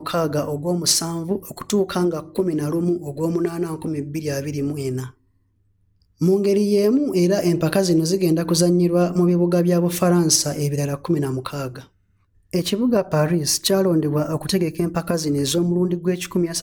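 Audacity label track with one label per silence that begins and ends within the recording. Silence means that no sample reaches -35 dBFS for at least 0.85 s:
5.100000	6.210000	silence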